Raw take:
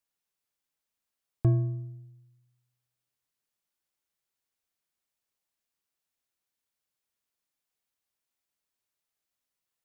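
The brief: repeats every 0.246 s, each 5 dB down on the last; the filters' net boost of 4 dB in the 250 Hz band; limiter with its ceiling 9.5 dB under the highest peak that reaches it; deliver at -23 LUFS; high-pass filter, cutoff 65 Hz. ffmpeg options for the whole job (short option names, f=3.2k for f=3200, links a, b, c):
-af "highpass=65,equalizer=f=250:t=o:g=8.5,alimiter=limit=-22dB:level=0:latency=1,aecho=1:1:246|492|738|984|1230|1476|1722:0.562|0.315|0.176|0.0988|0.0553|0.031|0.0173,volume=10.5dB"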